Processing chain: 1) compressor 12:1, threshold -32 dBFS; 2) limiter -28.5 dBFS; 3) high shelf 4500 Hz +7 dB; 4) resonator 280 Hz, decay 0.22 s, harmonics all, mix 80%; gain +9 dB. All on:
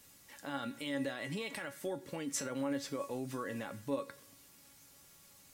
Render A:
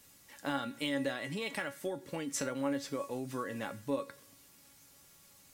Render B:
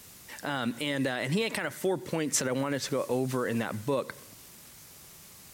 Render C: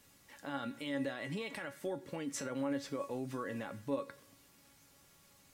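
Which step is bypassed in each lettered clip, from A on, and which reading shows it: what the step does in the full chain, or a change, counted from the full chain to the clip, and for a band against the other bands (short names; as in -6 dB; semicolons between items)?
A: 2, crest factor change +2.0 dB; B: 4, 125 Hz band +2.5 dB; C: 3, 8 kHz band -5.0 dB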